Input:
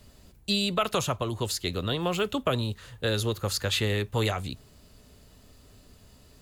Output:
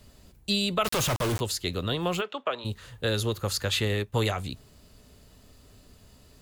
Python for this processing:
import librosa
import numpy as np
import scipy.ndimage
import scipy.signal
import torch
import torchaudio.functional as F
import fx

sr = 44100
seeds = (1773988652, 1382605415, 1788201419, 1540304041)

y = fx.quant_companded(x, sr, bits=2, at=(0.84, 1.39), fade=0.02)
y = fx.bandpass_edges(y, sr, low_hz=570.0, high_hz=3000.0, at=(2.2, 2.64), fade=0.02)
y = fx.transient(y, sr, attack_db=2, sustain_db=-8, at=(3.85, 4.26))